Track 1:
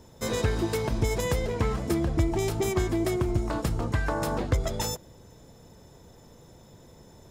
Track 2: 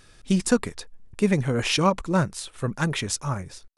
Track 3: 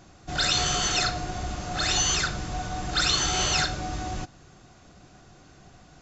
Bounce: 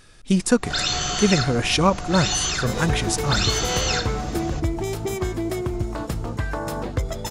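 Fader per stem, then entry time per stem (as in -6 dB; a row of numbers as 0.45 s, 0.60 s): +0.5 dB, +2.5 dB, +0.5 dB; 2.45 s, 0.00 s, 0.35 s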